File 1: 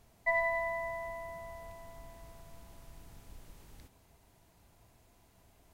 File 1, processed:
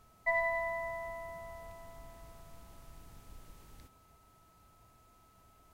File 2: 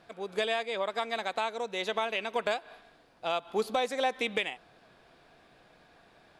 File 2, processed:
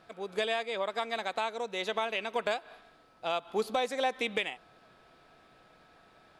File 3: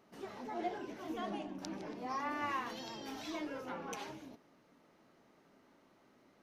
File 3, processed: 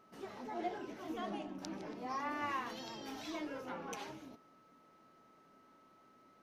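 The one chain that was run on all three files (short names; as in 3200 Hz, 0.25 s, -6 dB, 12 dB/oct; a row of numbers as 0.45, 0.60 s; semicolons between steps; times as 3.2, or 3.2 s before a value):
whine 1300 Hz -64 dBFS; gain -1 dB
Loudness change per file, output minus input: -1.0, -1.0, -1.0 LU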